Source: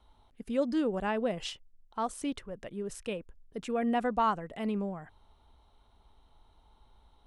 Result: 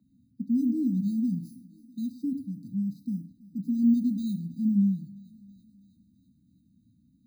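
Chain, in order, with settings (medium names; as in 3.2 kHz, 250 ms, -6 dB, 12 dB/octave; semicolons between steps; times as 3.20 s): bit-reversed sample order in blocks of 16 samples; graphic EQ 125/2000/4000 Hz +4/-9/-8 dB; thinning echo 327 ms, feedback 69%, high-pass 240 Hz, level -22.5 dB; reverberation RT60 0.45 s, pre-delay 3 ms, DRR 7 dB; in parallel at -1.5 dB: compression, threshold -43 dBFS, peak gain reduction 27 dB; on the sum: brick-wall FIR band-stop 300–3700 Hz; three-band isolator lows -22 dB, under 210 Hz, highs -22 dB, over 2.1 kHz; trim +4.5 dB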